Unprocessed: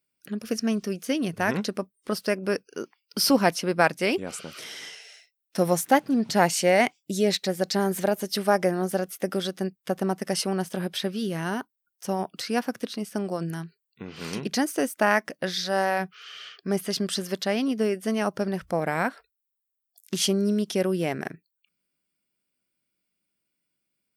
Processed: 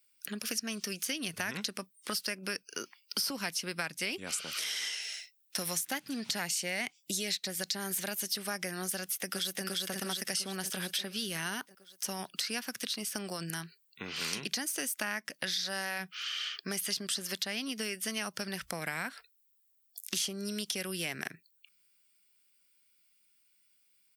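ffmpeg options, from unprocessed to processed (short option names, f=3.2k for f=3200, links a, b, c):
-filter_complex "[0:a]asplit=2[a][b];[b]afade=t=in:st=9:d=0.01,afade=t=out:st=9.64:d=0.01,aecho=0:1:350|700|1050|1400|1750|2100|2450|2800:0.841395|0.462767|0.254522|0.139987|0.0769929|0.0423461|0.0232904|0.0128097[c];[a][c]amix=inputs=2:normalize=0,acrossover=split=290|1500[d][e][f];[d]acompressor=threshold=-30dB:ratio=4[g];[e]acompressor=threshold=-37dB:ratio=4[h];[f]acompressor=threshold=-36dB:ratio=4[i];[g][h][i]amix=inputs=3:normalize=0,tiltshelf=f=1.1k:g=-9,acompressor=threshold=-38dB:ratio=2,volume=2.5dB"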